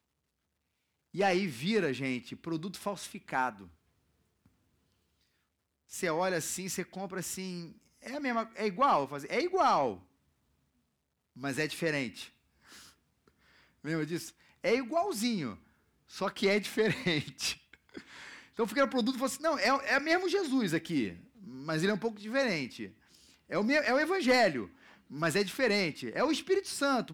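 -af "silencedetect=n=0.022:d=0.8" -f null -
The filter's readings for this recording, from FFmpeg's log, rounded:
silence_start: 0.00
silence_end: 1.17 | silence_duration: 1.17
silence_start: 3.50
silence_end: 5.95 | silence_duration: 2.45
silence_start: 9.92
silence_end: 11.44 | silence_duration: 1.52
silence_start: 12.22
silence_end: 13.86 | silence_duration: 1.65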